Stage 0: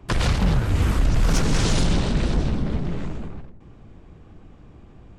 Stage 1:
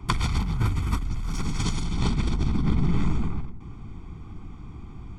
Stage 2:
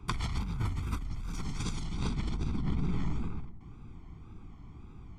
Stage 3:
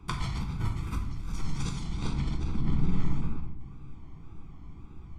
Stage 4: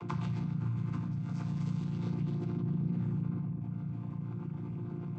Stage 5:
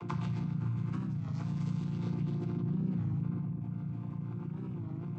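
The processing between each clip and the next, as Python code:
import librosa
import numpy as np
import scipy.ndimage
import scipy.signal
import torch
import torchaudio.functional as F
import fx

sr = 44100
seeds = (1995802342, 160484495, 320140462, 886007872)

y1 = x + 0.9 * np.pad(x, (int(0.9 * sr / 1000.0), 0))[:len(x)]
y1 = fx.over_compress(y1, sr, threshold_db=-20.0, ratio=-1.0)
y1 = y1 * librosa.db_to_amplitude(-3.5)
y2 = fx.wow_flutter(y1, sr, seeds[0], rate_hz=2.1, depth_cents=94.0)
y2 = y2 * librosa.db_to_amplitude(-8.5)
y3 = fx.room_shoebox(y2, sr, seeds[1], volume_m3=130.0, walls='mixed', distance_m=0.67)
y3 = y3 * librosa.db_to_amplitude(-1.0)
y4 = fx.chord_vocoder(y3, sr, chord='major triad', root=46)
y4 = fx.env_flatten(y4, sr, amount_pct=70)
y4 = y4 * librosa.db_to_amplitude(-4.0)
y5 = fx.record_warp(y4, sr, rpm=33.33, depth_cents=160.0)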